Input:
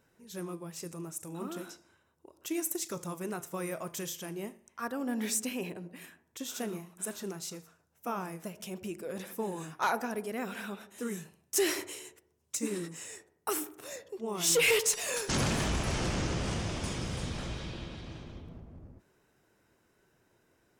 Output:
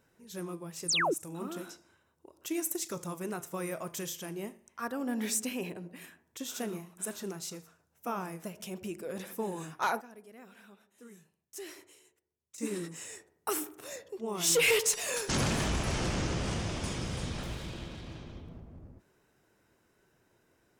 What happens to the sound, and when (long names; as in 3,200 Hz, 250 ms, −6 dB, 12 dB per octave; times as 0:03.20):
0:00.88–0:01.14: sound drawn into the spectrogram fall 280–9,700 Hz −28 dBFS
0:09.58–0:13.01: duck −16 dB, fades 0.43 s logarithmic
0:17.43–0:18.16: phase distortion by the signal itself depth 0.17 ms